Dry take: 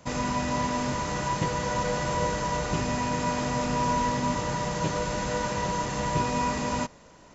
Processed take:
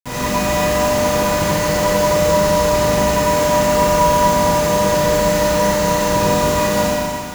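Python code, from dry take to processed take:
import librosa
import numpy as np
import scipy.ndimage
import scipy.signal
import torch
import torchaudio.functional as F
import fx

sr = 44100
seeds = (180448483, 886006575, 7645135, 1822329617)

y = fx.quant_dither(x, sr, seeds[0], bits=6, dither='none')
y = fx.rev_schroeder(y, sr, rt60_s=2.5, comb_ms=31, drr_db=-8.0)
y = y * librosa.db_to_amplitude(2.5)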